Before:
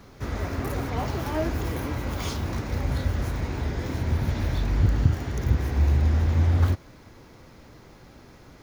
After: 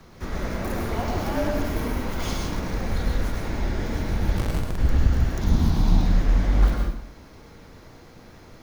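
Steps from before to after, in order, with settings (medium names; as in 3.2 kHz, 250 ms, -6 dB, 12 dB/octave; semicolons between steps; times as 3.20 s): 5.41–6.04 s: graphic EQ 125/250/500/1000/2000/4000 Hz +3/+9/-6/+6/-9/+9 dB; frequency shift -39 Hz; 4.37–4.78 s: Schmitt trigger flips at -27 dBFS; plate-style reverb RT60 0.68 s, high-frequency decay 0.8×, pre-delay 90 ms, DRR 1 dB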